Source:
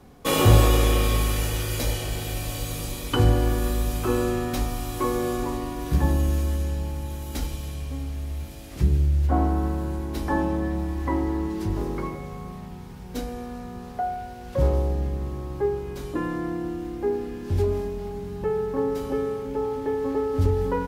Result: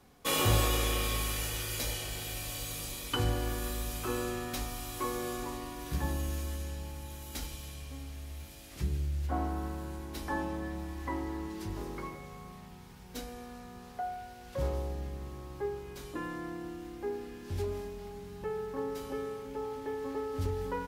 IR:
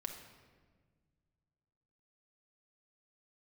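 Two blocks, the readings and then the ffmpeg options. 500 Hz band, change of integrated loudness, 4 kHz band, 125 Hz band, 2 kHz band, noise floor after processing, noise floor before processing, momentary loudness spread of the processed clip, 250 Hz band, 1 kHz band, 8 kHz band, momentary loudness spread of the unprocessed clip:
-11.0 dB, -10.0 dB, -4.0 dB, -12.5 dB, -5.5 dB, -50 dBFS, -39 dBFS, 13 LU, -11.5 dB, -8.5 dB, -3.5 dB, 12 LU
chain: -af "tiltshelf=f=970:g=-4.5,volume=-8dB"

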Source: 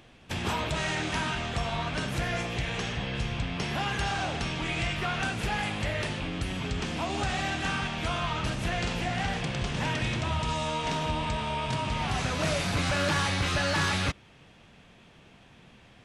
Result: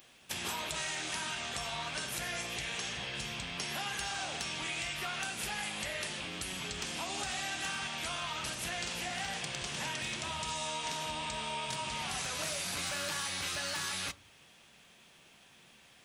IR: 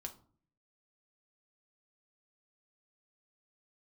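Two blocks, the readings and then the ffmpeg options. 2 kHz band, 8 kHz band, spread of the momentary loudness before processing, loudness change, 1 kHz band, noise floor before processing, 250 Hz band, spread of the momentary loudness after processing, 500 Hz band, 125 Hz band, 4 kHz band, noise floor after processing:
-6.0 dB, +2.5 dB, 6 LU, -6.0 dB, -8.0 dB, -55 dBFS, -13.5 dB, 3 LU, -10.5 dB, -17.0 dB, -3.0 dB, -61 dBFS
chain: -filter_complex "[0:a]aemphasis=mode=production:type=riaa,acompressor=threshold=-28dB:ratio=6,asplit=2[a][b];[1:a]atrim=start_sample=2205,lowshelf=f=210:g=10[c];[b][c]afir=irnorm=-1:irlink=0,volume=-3.5dB[d];[a][d]amix=inputs=2:normalize=0,volume=-8.5dB"

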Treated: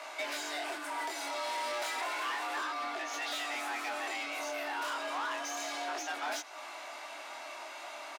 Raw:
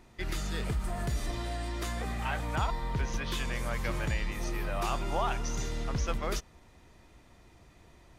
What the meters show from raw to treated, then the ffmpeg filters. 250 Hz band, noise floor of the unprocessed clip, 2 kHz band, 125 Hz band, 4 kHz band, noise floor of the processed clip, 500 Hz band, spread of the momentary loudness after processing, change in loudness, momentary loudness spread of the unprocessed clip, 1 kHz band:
-9.0 dB, -58 dBFS, +3.0 dB, under -40 dB, +2.5 dB, -46 dBFS, -2.0 dB, 9 LU, -2.5 dB, 4 LU, +1.5 dB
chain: -filter_complex "[0:a]flanger=delay=18.5:depth=7.7:speed=0.32,acompressor=threshold=-43dB:ratio=8,lowshelf=f=310:t=q:w=3:g=-7,asplit=2[a][b];[b]adelay=105,volume=-27dB,highshelf=f=4k:g=-2.36[c];[a][c]amix=inputs=2:normalize=0,asplit=2[d][e];[e]highpass=f=720:p=1,volume=23dB,asoftclip=type=tanh:threshold=-34.5dB[f];[d][f]amix=inputs=2:normalize=0,lowpass=f=5.5k:p=1,volume=-6dB,afreqshift=250,volume=5.5dB"

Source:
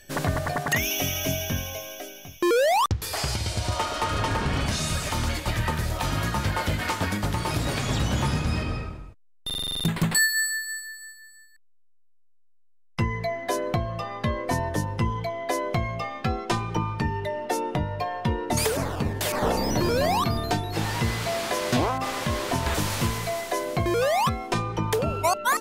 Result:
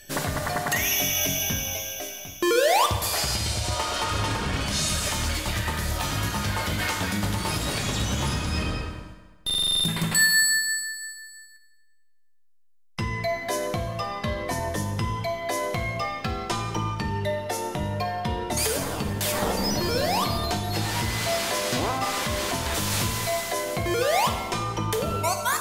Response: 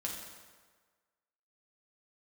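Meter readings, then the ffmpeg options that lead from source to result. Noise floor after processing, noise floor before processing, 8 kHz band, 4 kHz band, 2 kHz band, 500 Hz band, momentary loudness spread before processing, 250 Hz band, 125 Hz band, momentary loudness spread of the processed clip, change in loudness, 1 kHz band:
-54 dBFS, -55 dBFS, +4.5 dB, +4.0 dB, +1.5 dB, -0.5 dB, 7 LU, -1.5 dB, -2.0 dB, 8 LU, +1.0 dB, -0.5 dB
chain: -filter_complex "[0:a]alimiter=limit=-18.5dB:level=0:latency=1:release=142,asplit=2[a][b];[1:a]atrim=start_sample=2205,highshelf=f=2.1k:g=10.5[c];[b][c]afir=irnorm=-1:irlink=0,volume=-2dB[d];[a][d]amix=inputs=2:normalize=0,volume=-4dB"

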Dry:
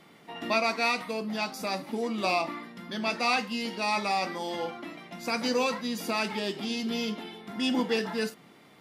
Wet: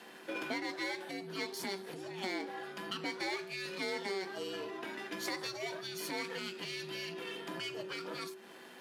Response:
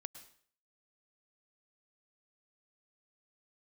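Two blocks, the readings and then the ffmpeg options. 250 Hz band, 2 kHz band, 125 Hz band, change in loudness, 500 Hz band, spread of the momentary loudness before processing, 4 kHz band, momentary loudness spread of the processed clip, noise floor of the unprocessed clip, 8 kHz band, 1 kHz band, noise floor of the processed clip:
-11.5 dB, -8.0 dB, -9.0 dB, -10.0 dB, -9.0 dB, 11 LU, -7.0 dB, 5 LU, -56 dBFS, -6.0 dB, -13.5 dB, -53 dBFS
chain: -af "aeval=exprs='if(lt(val(0),0),0.447*val(0),val(0))':c=same,afreqshift=-380,acompressor=threshold=-41dB:ratio=10,highpass=f=250:w=0.5412,highpass=f=250:w=1.3066,volume=7.5dB"

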